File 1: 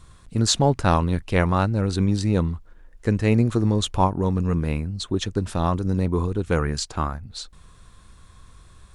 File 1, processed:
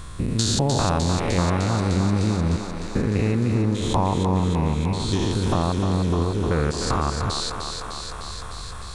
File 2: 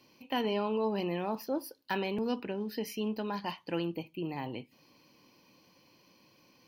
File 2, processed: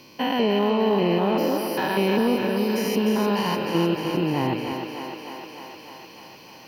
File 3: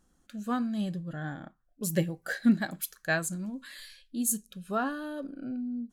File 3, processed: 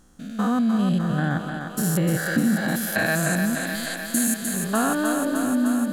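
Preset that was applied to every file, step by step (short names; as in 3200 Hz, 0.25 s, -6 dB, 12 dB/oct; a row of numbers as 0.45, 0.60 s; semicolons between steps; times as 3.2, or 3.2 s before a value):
stepped spectrum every 0.2 s; compressor 5:1, threshold -33 dBFS; on a send: thinning echo 0.303 s, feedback 77%, high-pass 270 Hz, level -5.5 dB; on the sum: match loudness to -23 LUFS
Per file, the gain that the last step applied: +13.5, +16.0, +14.5 dB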